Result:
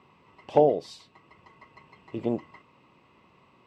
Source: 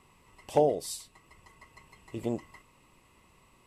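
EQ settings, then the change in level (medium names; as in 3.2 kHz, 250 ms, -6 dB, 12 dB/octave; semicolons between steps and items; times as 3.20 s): high-pass 130 Hz 12 dB/octave; distance through air 220 m; peaking EQ 1.9 kHz -3.5 dB 0.23 oct; +5.0 dB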